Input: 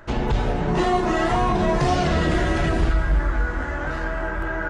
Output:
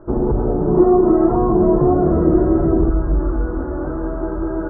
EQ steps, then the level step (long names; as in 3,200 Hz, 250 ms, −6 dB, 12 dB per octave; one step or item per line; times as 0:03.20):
elliptic low-pass filter 1,300 Hz, stop band 80 dB
tilt shelving filter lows +4 dB, about 740 Hz
parametric band 350 Hz +11 dB 0.86 octaves
−1.0 dB